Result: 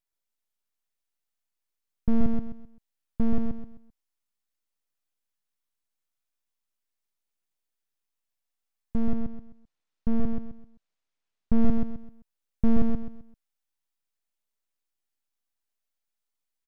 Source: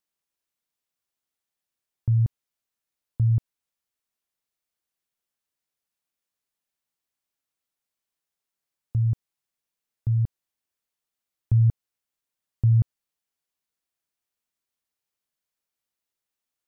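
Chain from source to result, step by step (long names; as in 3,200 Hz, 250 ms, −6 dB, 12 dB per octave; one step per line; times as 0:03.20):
phase shifter 0.41 Hz, delay 1.5 ms, feedback 38%
full-wave rectification
repeating echo 130 ms, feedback 31%, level −4 dB
0:09.12–0:11.62: linearly interpolated sample-rate reduction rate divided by 3×
level −1.5 dB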